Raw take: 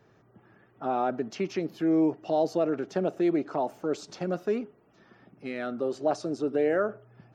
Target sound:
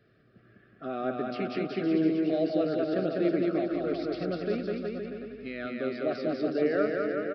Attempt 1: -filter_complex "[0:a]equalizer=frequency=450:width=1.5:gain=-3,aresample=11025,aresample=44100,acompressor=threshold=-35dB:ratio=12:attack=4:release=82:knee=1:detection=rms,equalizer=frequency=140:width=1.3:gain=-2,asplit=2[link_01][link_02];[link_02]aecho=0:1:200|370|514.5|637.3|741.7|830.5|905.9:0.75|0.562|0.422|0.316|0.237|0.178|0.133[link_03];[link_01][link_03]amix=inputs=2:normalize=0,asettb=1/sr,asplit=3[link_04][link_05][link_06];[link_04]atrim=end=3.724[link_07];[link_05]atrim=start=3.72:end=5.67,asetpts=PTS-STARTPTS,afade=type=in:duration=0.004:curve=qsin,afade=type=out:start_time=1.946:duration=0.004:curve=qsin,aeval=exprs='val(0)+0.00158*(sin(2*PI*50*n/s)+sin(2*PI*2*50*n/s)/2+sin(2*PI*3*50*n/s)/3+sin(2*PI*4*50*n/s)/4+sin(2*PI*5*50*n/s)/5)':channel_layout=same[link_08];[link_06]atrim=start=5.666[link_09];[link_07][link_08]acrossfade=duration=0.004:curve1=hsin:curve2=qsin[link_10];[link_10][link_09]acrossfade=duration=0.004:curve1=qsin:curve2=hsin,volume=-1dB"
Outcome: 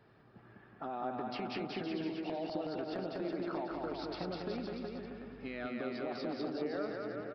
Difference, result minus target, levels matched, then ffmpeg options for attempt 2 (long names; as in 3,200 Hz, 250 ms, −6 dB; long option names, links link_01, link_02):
downward compressor: peak gain reduction +14.5 dB; 1,000 Hz band +6.5 dB
-filter_complex "[0:a]asuperstop=centerf=910:order=4:qfactor=1.6,equalizer=frequency=450:width=1.5:gain=-3,aresample=11025,aresample=44100,equalizer=frequency=140:width=1.3:gain=-2,asplit=2[link_01][link_02];[link_02]aecho=0:1:200|370|514.5|637.3|741.7|830.5|905.9:0.75|0.562|0.422|0.316|0.237|0.178|0.133[link_03];[link_01][link_03]amix=inputs=2:normalize=0,asettb=1/sr,asplit=3[link_04][link_05][link_06];[link_04]atrim=end=3.724[link_07];[link_05]atrim=start=3.72:end=5.67,asetpts=PTS-STARTPTS,afade=type=in:duration=0.004:curve=qsin,afade=type=out:start_time=1.946:duration=0.004:curve=qsin,aeval=exprs='val(0)+0.00158*(sin(2*PI*50*n/s)+sin(2*PI*2*50*n/s)/2+sin(2*PI*3*50*n/s)/3+sin(2*PI*4*50*n/s)/4+sin(2*PI*5*50*n/s)/5)':channel_layout=same[link_08];[link_06]atrim=start=5.666[link_09];[link_07][link_08]acrossfade=duration=0.004:curve1=hsin:curve2=qsin[link_10];[link_10][link_09]acrossfade=duration=0.004:curve1=qsin:curve2=hsin,volume=-1dB"